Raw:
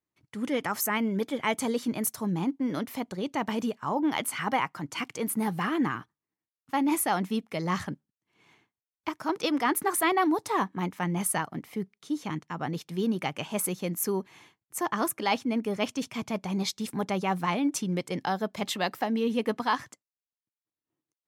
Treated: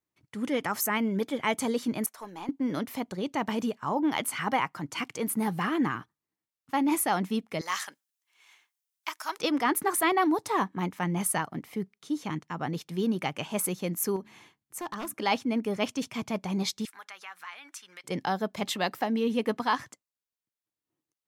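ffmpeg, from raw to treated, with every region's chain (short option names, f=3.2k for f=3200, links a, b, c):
-filter_complex "[0:a]asettb=1/sr,asplit=3[a][b][c];[a]atrim=end=2.064[d];[b]atrim=start=2.06:end=2.49,asetpts=PTS-STARTPTS,afade=t=in:d=0.004:c=qsin,afade=t=out:st=0.426:d=0.004:c=qsin,highpass=600,acrossover=split=2800[e][f];[f]acompressor=threshold=-46dB:ratio=4:attack=1:release=60[g];[e][g]amix=inputs=2:normalize=0,aeval=exprs='(tanh(22.4*val(0)+0.3)-tanh(0.3))/22.4':c=same[h];[c]atrim=start=2.486[i];[d][h]acrossfade=d=0.004:c1=hsin:c2=qsin[j];[j][i]acrossfade=d=0.004:c1=qsin:c2=hsin,asettb=1/sr,asplit=3[k][l][m];[k]atrim=end=7.614[n];[l]atrim=start=7.61:end=9.39,asetpts=PTS-STARTPTS,afade=t=in:d=0.004:c=qsin,afade=t=out:st=1.776:d=0.004:c=qsin,highpass=970,highshelf=f=3.3k:g=11,bandreject=f=4.4k:w=27[o];[m]atrim=start=9.386[p];[n][o]acrossfade=d=0.004:c1=hsin:c2=qsin[q];[q][p]acrossfade=d=0.004:c1=qsin:c2=hsin,asettb=1/sr,asplit=3[r][s][t];[r]atrim=end=14.164[u];[s]atrim=start=14.16:end=15.14,asetpts=PTS-STARTPTS,afade=t=in:d=0.004:c=qsin,afade=t=out:st=0.976:d=0.004:c=qsin,bandreject=f=71.79:t=h:w=4,bandreject=f=143.58:t=h:w=4,bandreject=f=215.37:t=h:w=4,bandreject=f=287.16:t=h:w=4,acompressor=threshold=-42dB:ratio=1.5:attack=3.2:release=140:knee=1:detection=peak,aeval=exprs='0.0398*(abs(mod(val(0)/0.0398+3,4)-2)-1)':c=same[v];[t]atrim=start=15.136[w];[u][v]acrossfade=d=0.004:c1=hsin:c2=qsin[x];[x][w]acrossfade=d=0.004:c1=qsin:c2=hsin,asettb=1/sr,asplit=3[y][z][aa];[y]atrim=end=16.854[ab];[z]atrim=start=16.85:end=18.04,asetpts=PTS-STARTPTS,afade=t=in:d=0.004:c=qsin,afade=t=out:st=1.186:d=0.004:c=qsin,highpass=f=1.5k:t=q:w=2,acompressor=threshold=-48dB:ratio=2:attack=3.2:release=140:knee=1:detection=peak[ac];[aa]atrim=start=18.036[ad];[ab][ac]acrossfade=d=0.004:c1=hsin:c2=qsin[ae];[ae][ad]acrossfade=d=0.004:c1=qsin:c2=hsin"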